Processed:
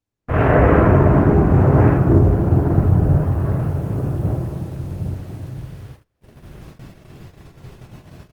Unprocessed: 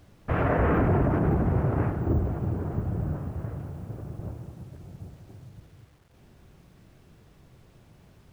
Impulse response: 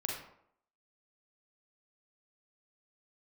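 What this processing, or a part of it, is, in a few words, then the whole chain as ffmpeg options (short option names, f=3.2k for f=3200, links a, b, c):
speakerphone in a meeting room: -filter_complex "[1:a]atrim=start_sample=2205[a];[0:a][a]afir=irnorm=-1:irlink=0,asplit=2[b][c];[c]adelay=300,highpass=300,lowpass=3.4k,asoftclip=type=hard:threshold=-17.5dB,volume=-19dB[d];[b][d]amix=inputs=2:normalize=0,dynaudnorm=f=210:g=3:m=14dB,agate=range=-30dB:threshold=-37dB:ratio=16:detection=peak" -ar 48000 -c:a libopus -b:a 24k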